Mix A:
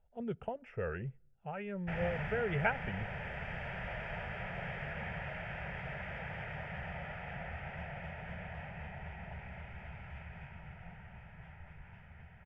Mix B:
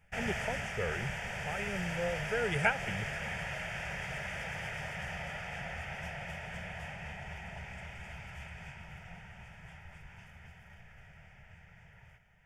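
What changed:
background: entry -1.75 s; master: remove air absorption 480 m

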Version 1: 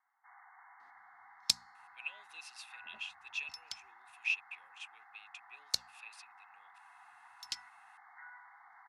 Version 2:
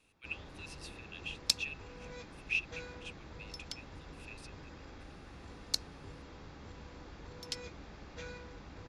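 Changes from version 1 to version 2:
speech: entry -1.75 s; first sound: remove brick-wall FIR band-pass 700–2200 Hz

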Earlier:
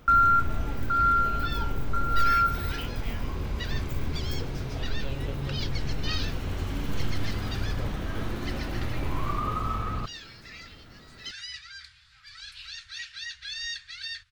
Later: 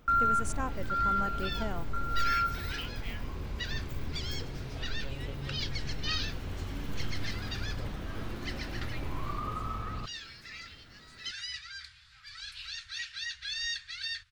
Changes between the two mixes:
speech: unmuted; first sound -6.5 dB

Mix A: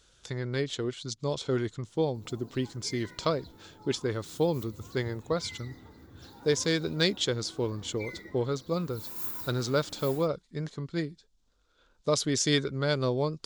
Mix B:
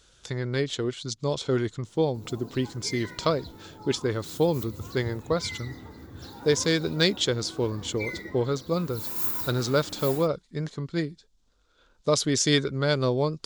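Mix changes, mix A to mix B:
speech +3.5 dB; background +7.5 dB

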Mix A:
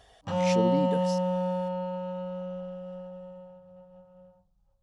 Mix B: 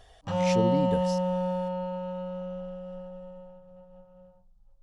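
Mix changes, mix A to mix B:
speech: remove HPF 160 Hz 24 dB/oct; master: remove HPF 50 Hz 12 dB/oct

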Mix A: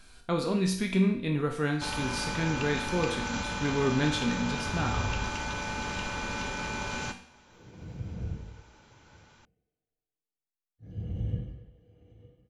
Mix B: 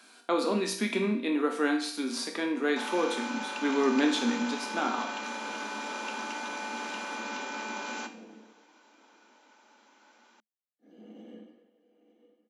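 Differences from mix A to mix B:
speech +4.5 dB; first sound: entry +0.95 s; master: add rippled Chebyshev high-pass 210 Hz, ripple 3 dB

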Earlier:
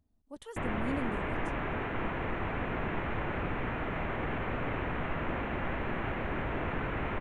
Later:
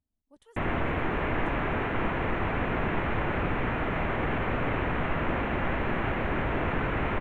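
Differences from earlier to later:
speech -11.5 dB; background +5.5 dB

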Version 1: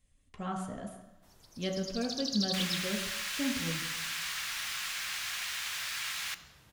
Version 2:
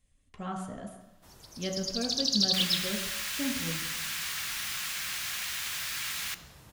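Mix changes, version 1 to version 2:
first sound +8.0 dB; second sound: add high shelf 9200 Hz +8.5 dB

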